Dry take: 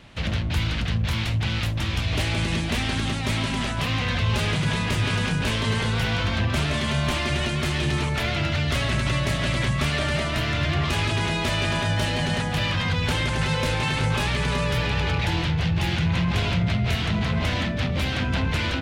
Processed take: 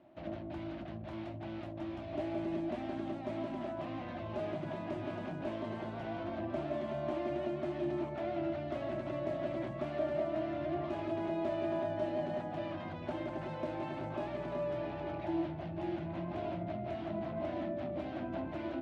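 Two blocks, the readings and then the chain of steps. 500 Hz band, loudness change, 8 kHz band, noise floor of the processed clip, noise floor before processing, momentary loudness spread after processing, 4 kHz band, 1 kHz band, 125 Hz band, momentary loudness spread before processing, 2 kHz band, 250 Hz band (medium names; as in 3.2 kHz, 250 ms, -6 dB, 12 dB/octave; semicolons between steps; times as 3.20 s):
-4.5 dB, -14.5 dB, under -35 dB, -43 dBFS, -27 dBFS, 6 LU, -28.5 dB, -12.0 dB, -22.0 dB, 2 LU, -23.5 dB, -10.0 dB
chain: two resonant band-passes 460 Hz, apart 0.89 oct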